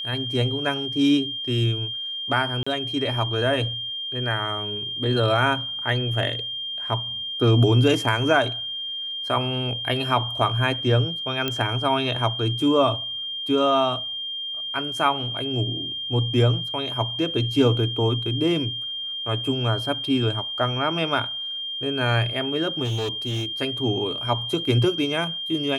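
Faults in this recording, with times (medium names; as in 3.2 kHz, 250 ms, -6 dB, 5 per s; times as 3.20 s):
whine 3.2 kHz -28 dBFS
2.63–2.67 s: dropout 35 ms
11.48 s: pop -10 dBFS
22.84–23.46 s: clipped -22.5 dBFS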